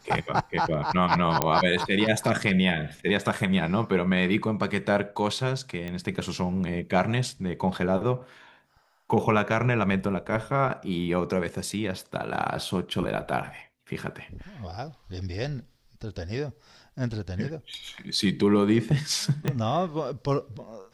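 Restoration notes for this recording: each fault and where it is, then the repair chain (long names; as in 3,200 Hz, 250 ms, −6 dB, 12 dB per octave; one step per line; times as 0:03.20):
0:01.42: click −5 dBFS
0:05.88: click −22 dBFS
0:19.48: click −13 dBFS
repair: click removal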